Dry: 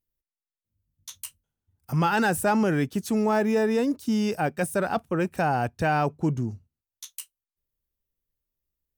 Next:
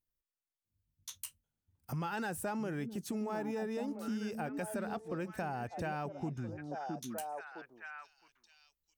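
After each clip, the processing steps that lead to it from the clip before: repeats whose band climbs or falls 662 ms, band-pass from 250 Hz, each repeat 1.4 oct, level -5 dB; compression 3:1, threshold -33 dBFS, peak gain reduction 11 dB; trim -5 dB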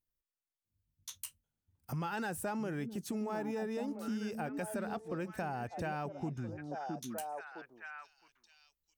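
no audible change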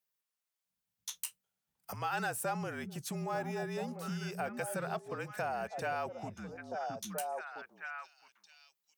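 high-pass 220 Hz 24 dB/octave; peaking EQ 340 Hz -14.5 dB 0.6 oct; frequency shift -43 Hz; trim +4.5 dB

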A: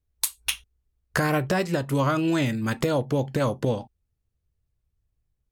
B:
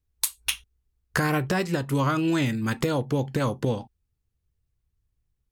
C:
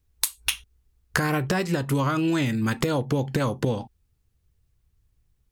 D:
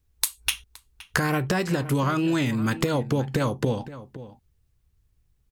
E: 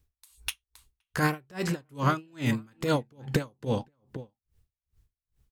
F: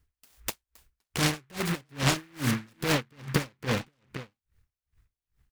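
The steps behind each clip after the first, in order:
peaking EQ 610 Hz -6 dB 0.39 oct
compression 3:1, threshold -31 dBFS, peak gain reduction 9.5 dB; trim +8 dB
echo from a far wall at 89 m, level -15 dB
logarithmic tremolo 2.4 Hz, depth 37 dB; trim +2 dB
delay time shaken by noise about 1.6 kHz, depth 0.26 ms

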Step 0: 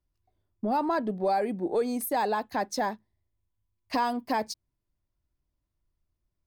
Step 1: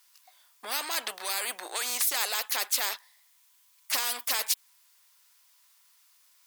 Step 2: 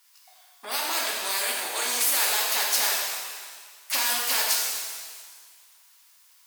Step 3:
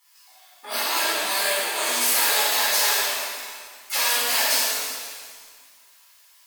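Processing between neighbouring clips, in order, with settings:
high-pass 930 Hz 24 dB/octave; treble shelf 2.3 kHz +11.5 dB; spectrum-flattening compressor 4:1
pitch-shifted reverb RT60 1.7 s, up +7 st, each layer -8 dB, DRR -3.5 dB
flange 0.79 Hz, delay 0.9 ms, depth 2.6 ms, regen -39%; simulated room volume 800 m³, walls mixed, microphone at 4.1 m

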